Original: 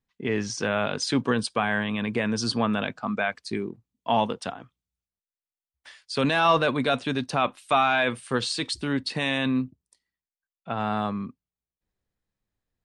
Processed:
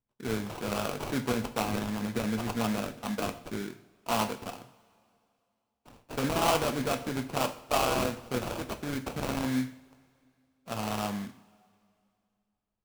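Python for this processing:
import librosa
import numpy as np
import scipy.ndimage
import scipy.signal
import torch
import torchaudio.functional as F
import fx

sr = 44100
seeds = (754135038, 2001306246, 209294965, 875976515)

y = fx.sample_hold(x, sr, seeds[0], rate_hz=1900.0, jitter_pct=20)
y = fx.rev_double_slope(y, sr, seeds[1], early_s=0.47, late_s=2.5, knee_db=-21, drr_db=6.5)
y = y * 10.0 ** (-6.5 / 20.0)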